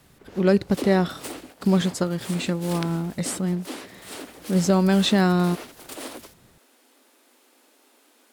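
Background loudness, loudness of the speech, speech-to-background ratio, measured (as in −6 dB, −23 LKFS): −38.5 LKFS, −23.0 LKFS, 15.5 dB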